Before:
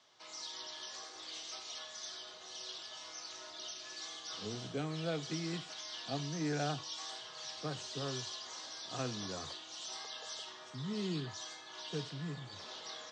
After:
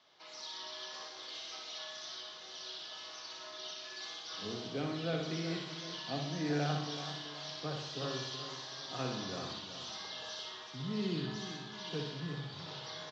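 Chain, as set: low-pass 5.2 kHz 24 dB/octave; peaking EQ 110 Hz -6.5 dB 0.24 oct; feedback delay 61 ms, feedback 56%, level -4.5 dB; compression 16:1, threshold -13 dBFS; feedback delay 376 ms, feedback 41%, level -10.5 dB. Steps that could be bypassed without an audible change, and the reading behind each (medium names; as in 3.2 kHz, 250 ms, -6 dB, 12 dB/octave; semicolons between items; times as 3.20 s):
compression, threshold -13 dBFS: peak at its input -22.5 dBFS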